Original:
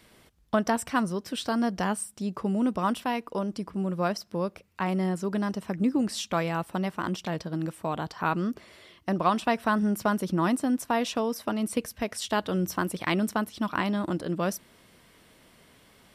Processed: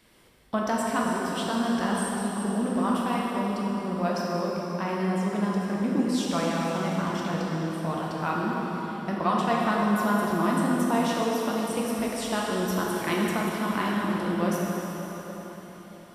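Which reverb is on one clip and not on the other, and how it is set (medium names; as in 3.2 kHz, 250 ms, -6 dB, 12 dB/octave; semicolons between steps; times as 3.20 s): plate-style reverb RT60 4.6 s, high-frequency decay 0.8×, DRR -4.5 dB; trim -4 dB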